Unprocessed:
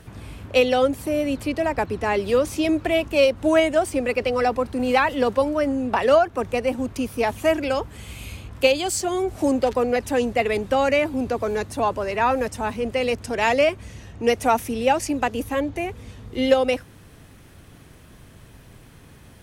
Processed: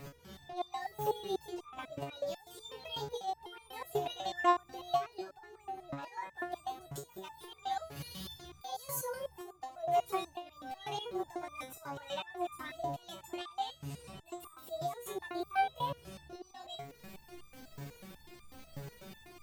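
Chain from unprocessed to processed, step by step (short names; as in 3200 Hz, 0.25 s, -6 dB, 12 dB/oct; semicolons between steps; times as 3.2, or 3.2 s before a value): delay-line pitch shifter +6 st; auto swell 0.555 s; compressor 2:1, threshold -41 dBFS, peak gain reduction 13 dB; pre-echo 0.149 s -13 dB; stepped resonator 8.1 Hz 140–1200 Hz; gain +12 dB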